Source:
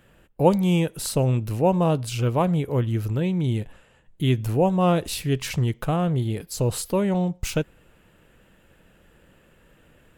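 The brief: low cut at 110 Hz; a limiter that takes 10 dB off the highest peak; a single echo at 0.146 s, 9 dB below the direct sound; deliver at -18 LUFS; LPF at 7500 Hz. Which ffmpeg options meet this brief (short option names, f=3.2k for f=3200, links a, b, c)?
-af "highpass=110,lowpass=7.5k,alimiter=limit=-15dB:level=0:latency=1,aecho=1:1:146:0.355,volume=7dB"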